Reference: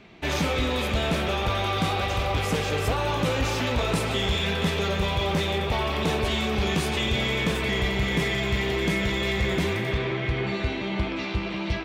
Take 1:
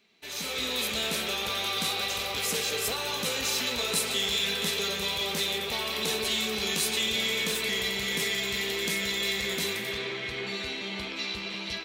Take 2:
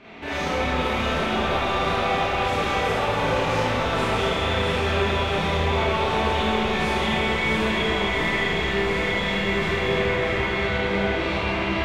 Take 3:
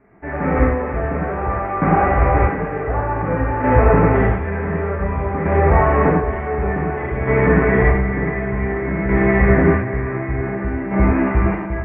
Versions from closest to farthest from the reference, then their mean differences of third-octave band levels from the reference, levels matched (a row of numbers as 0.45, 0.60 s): 2, 1, 3; 4.5, 8.0, 13.0 dB